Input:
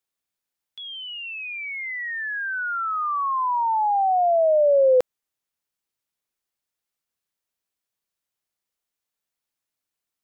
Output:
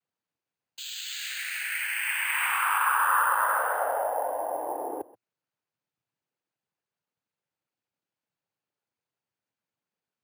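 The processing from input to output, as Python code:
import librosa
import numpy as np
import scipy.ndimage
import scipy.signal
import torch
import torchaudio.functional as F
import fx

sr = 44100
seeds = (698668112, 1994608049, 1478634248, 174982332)

y = fx.high_shelf(x, sr, hz=2200.0, db=-9.5)
y = fx.over_compress(y, sr, threshold_db=-27.0, ratio=-1.0)
y = y + 10.0 ** (-19.5 / 20.0) * np.pad(y, (int(133 * sr / 1000.0), 0))[:len(y)]
y = fx.noise_vocoder(y, sr, seeds[0], bands=8)
y = np.repeat(scipy.signal.resample_poly(y, 1, 4), 4)[:len(y)]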